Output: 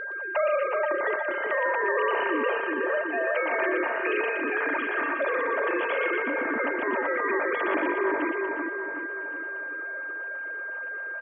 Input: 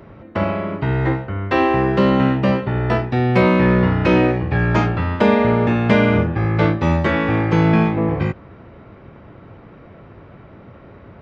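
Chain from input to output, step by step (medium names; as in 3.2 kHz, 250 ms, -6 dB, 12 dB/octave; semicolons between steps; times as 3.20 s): formants replaced by sine waves; high-pass 590 Hz 6 dB/octave; band-stop 810 Hz, Q 17; comb 3.3 ms, depth 43%; in parallel at -2 dB: compression, threshold -29 dBFS, peak gain reduction 17.5 dB; on the sum: peak limiter -11 dBFS, peak gain reduction 8.5 dB; gain riding within 5 dB 2 s; whistle 1.6 kHz -22 dBFS; distance through air 110 m; on a send: two-band feedback delay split 2 kHz, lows 372 ms, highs 119 ms, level -3 dB; on the sum: trim -9 dB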